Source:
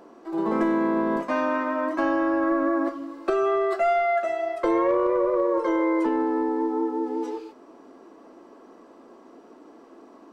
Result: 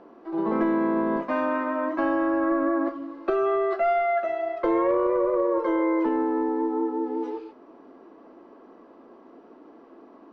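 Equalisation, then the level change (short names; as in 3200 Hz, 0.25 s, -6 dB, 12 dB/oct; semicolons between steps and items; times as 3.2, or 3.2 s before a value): air absorption 230 m; 0.0 dB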